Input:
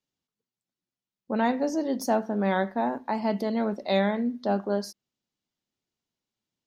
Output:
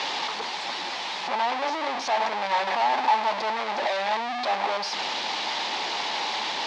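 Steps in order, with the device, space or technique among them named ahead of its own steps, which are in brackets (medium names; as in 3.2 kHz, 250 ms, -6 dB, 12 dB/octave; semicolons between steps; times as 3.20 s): home computer beeper (one-bit comparator; cabinet simulation 730–4300 Hz, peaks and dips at 860 Hz +10 dB, 1.4 kHz -6 dB, 2.9 kHz -3 dB); trim +7 dB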